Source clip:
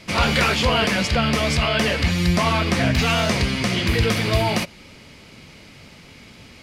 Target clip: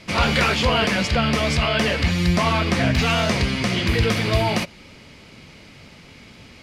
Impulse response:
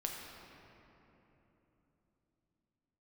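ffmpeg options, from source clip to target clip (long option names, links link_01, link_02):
-af "highshelf=frequency=9000:gain=-6.5"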